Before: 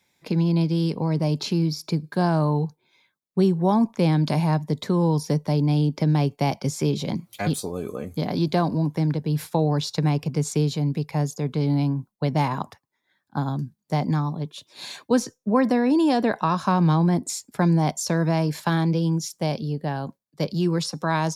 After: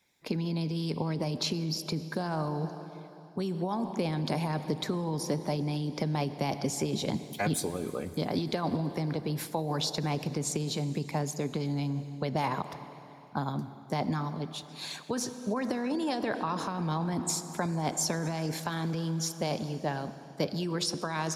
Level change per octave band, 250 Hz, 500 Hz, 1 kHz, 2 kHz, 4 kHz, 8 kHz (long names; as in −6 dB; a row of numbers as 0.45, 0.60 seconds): −10.0, −7.5, −7.0, −5.5, −2.5, −1.0 decibels